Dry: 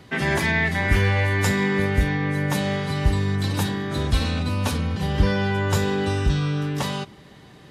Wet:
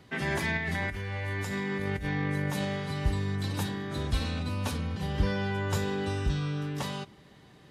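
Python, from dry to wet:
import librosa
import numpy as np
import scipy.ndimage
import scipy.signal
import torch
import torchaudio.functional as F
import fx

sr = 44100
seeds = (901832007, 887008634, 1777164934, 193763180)

y = fx.over_compress(x, sr, threshold_db=-24.0, ratio=-1.0, at=(0.57, 2.65))
y = F.gain(torch.from_numpy(y), -8.0).numpy()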